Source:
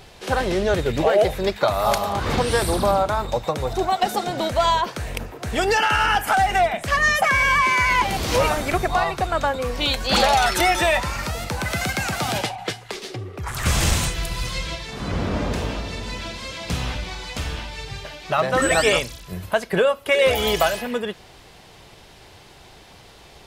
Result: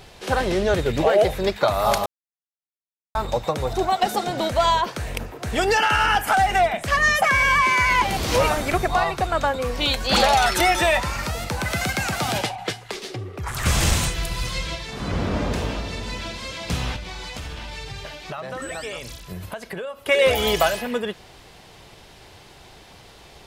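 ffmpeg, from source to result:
ffmpeg -i in.wav -filter_complex "[0:a]asettb=1/sr,asplit=3[link_01][link_02][link_03];[link_01]atrim=end=16.964[link_04];[link_02]atrim=start=16.96:end=20.04,asetpts=PTS-STARTPTS,afade=type=in:duration=0.004:curve=qsin,afade=type=out:start_time=3.076:duration=0.004:curve=qsin,acompressor=threshold=-29dB:ratio=6:attack=3.2:release=140:knee=1:detection=peak[link_05];[link_03]atrim=start=20.036[link_06];[link_04][link_05]acrossfade=duration=0.004:curve1=hsin:curve2=qsin[link_07];[link_07][link_06]acrossfade=duration=0.004:curve1=qsin:curve2=hsin,asplit=3[link_08][link_09][link_10];[link_08]atrim=end=2.06,asetpts=PTS-STARTPTS,afade=type=out:start_time=2.056:duration=0.004:curve=hsin[link_11];[link_09]atrim=start=2.06:end=3.15,asetpts=PTS-STARTPTS,volume=0[link_12];[link_10]atrim=start=3.15,asetpts=PTS-STARTPTS,afade=type=in:duration=0.004:curve=hsin[link_13];[link_11][link_12][link_13]concat=n=3:v=0:a=1" out.wav

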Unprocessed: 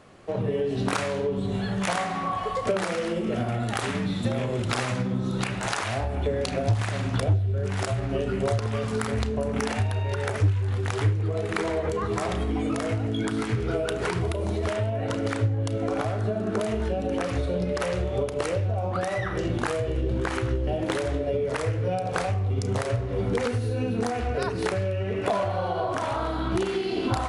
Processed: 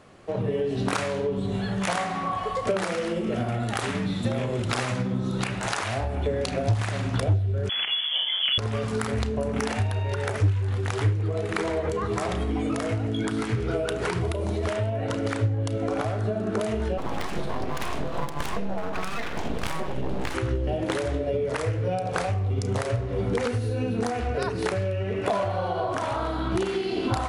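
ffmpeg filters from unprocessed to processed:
ffmpeg -i in.wav -filter_complex "[0:a]asettb=1/sr,asplit=3[link_01][link_02][link_03];[link_01]atrim=end=7.694[link_04];[link_02]atrim=start=7.69:end=8.58,asetpts=PTS-STARTPTS,afade=type=in:duration=0.004:curve=qsin,afade=type=out:start_time=0.886:duration=0.004:curve=qsin,lowpass=frequency=3000:width_type=q:width=0.5098,lowpass=frequency=3000:width_type=q:width=0.6013,lowpass=frequency=3000:width_type=q:width=0.9,lowpass=frequency=3000:width_type=q:width=2.563,afreqshift=-3500[link_05];[link_03]atrim=start=8.576[link_06];[link_04][link_05]acrossfade=duration=0.004:curve1=hsin:curve2=qsin[link_07];[link_07][link_06]acrossfade=duration=0.004:curve1=qsin:curve2=hsin,asplit=3[link_08][link_09][link_10];[link_08]afade=type=out:start_time=16.97:duration=0.02[link_11];[link_09]aeval=exprs='abs(val(0))':channel_layout=same,afade=type=in:start_time=16.97:duration=0.02,afade=type=out:start_time=20.33:duration=0.02[link_12];[link_10]afade=type=in:start_time=20.33:duration=0.02[link_13];[link_11][link_12][link_13]amix=inputs=3:normalize=0" out.wav

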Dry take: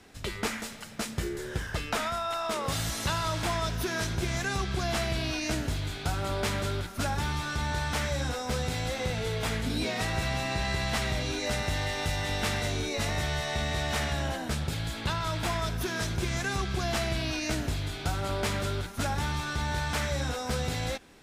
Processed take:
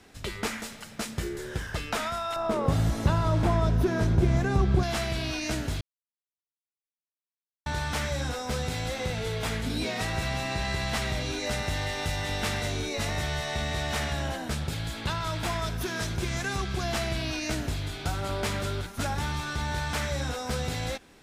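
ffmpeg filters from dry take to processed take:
ffmpeg -i in.wav -filter_complex "[0:a]asettb=1/sr,asplit=3[link_01][link_02][link_03];[link_01]atrim=end=2.364[link_04];[link_02]atrim=start=2.36:end=4.83,asetpts=PTS-STARTPTS,afade=type=in:duration=0.004:curve=qsin,afade=type=out:start_time=2.466:duration=0.004:curve=qsin,tiltshelf=frequency=1200:gain=9.5[link_05];[link_03]atrim=start=4.826[link_06];[link_04][link_05]acrossfade=duration=0.004:curve1=hsin:curve2=qsin[link_07];[link_07][link_06]acrossfade=duration=0.004:curve1=qsin:curve2=hsin,asplit=3[link_08][link_09][link_10];[link_08]atrim=end=5.81,asetpts=PTS-STARTPTS,afade=type=out:start_time=5.806:duration=0.004:curve=hsin[link_11];[link_09]atrim=start=5.81:end=7.66,asetpts=PTS-STARTPTS,volume=0[link_12];[link_10]atrim=start=7.66,asetpts=PTS-STARTPTS,afade=type=in:duration=0.004:curve=hsin[link_13];[link_11][link_12][link_13]concat=n=3:v=0:a=1" out.wav

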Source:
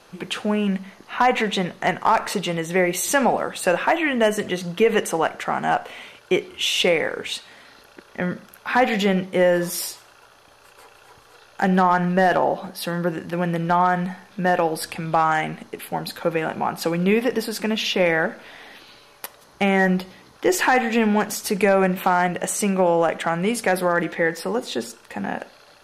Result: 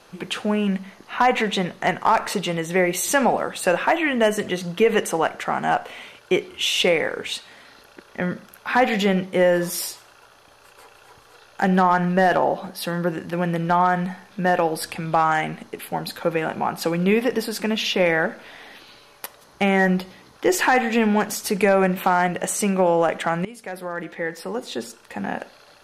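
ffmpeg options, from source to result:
ffmpeg -i in.wav -filter_complex "[0:a]asplit=2[link_01][link_02];[link_01]atrim=end=23.45,asetpts=PTS-STARTPTS,afade=type=out:start_time=23.446:duration=0.004:curve=hsin:silence=0.112202[link_03];[link_02]atrim=start=23.45,asetpts=PTS-STARTPTS,afade=type=in:duration=1.9:silence=0.112202[link_04];[link_03][link_04]concat=n=2:v=0:a=1" out.wav

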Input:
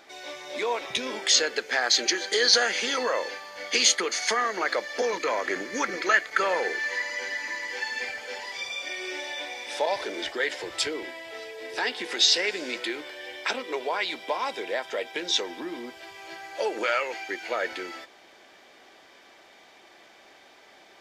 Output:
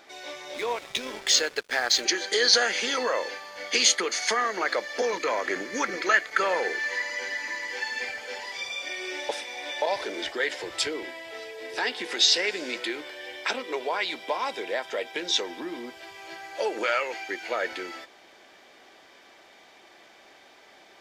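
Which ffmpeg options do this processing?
ffmpeg -i in.wav -filter_complex "[0:a]asettb=1/sr,asplit=3[link_01][link_02][link_03];[link_01]atrim=end=0.544[link_04];[link_02]atrim=start=0.54:end=2.05,asetpts=PTS-STARTPTS,afade=type=in:duration=0.004:curve=qsin,afade=type=out:start_time=1.506:duration=0.004:curve=qsin,aeval=exprs='sgn(val(0))*max(abs(val(0))-0.0106,0)':channel_layout=same[link_05];[link_03]atrim=start=2.046[link_06];[link_04][link_05]acrossfade=duration=0.004:curve1=hsin:curve2=qsin[link_07];[link_07][link_06]acrossfade=duration=0.004:curve1=qsin:curve2=hsin,asplit=3[link_08][link_09][link_10];[link_08]atrim=end=9.292[link_11];[link_09]atrim=start=9.288:end=9.822,asetpts=PTS-STARTPTS,areverse[link_12];[link_10]atrim=start=9.818[link_13];[link_11][link_12]acrossfade=duration=0.004:curve1=hsin:curve2=hsin[link_14];[link_14][link_13]acrossfade=duration=0.004:curve1=hsin:curve2=hsin" out.wav

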